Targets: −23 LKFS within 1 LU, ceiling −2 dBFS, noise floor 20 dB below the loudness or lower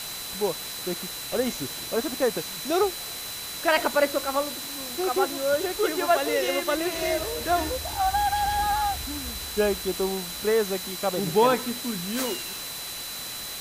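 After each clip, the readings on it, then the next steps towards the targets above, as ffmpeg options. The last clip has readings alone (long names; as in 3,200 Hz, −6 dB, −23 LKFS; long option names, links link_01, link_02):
interfering tone 4,000 Hz; level of the tone −38 dBFS; background noise floor −36 dBFS; target noise floor −47 dBFS; integrated loudness −26.5 LKFS; sample peak −9.0 dBFS; target loudness −23.0 LKFS
→ -af "bandreject=frequency=4000:width=30"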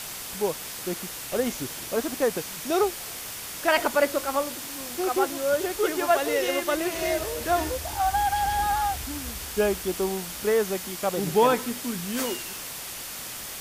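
interfering tone none found; background noise floor −37 dBFS; target noise floor −47 dBFS
→ -af "afftdn=noise_reduction=10:noise_floor=-37"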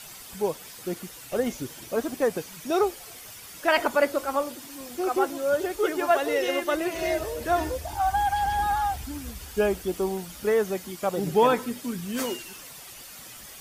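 background noise floor −44 dBFS; target noise floor −47 dBFS
→ -af "afftdn=noise_reduction=6:noise_floor=-44"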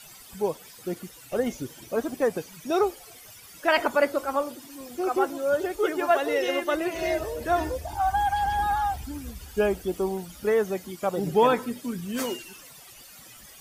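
background noise floor −48 dBFS; integrated loudness −27.0 LKFS; sample peak −9.0 dBFS; target loudness −23.0 LKFS
→ -af "volume=4dB"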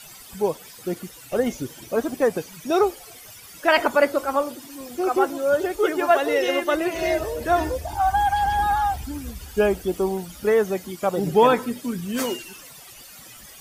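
integrated loudness −23.0 LKFS; sample peak −5.0 dBFS; background noise floor −44 dBFS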